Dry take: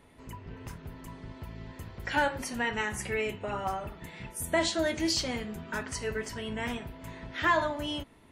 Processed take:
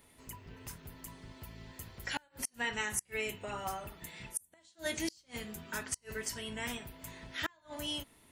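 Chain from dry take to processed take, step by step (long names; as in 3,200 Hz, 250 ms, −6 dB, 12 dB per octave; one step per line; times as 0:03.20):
first-order pre-emphasis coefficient 0.8
gate with flip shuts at −28 dBFS, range −34 dB
level +6.5 dB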